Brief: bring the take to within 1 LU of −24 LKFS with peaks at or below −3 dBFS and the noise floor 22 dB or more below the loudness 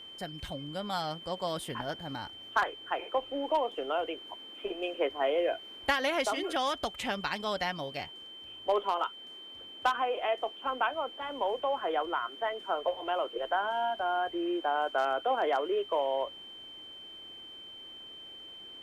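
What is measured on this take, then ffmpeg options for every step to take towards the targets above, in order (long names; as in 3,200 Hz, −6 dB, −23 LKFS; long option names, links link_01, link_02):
interfering tone 3,100 Hz; level of the tone −45 dBFS; integrated loudness −32.5 LKFS; sample peak −14.5 dBFS; target loudness −24.0 LKFS
→ -af "bandreject=frequency=3100:width=30"
-af "volume=8.5dB"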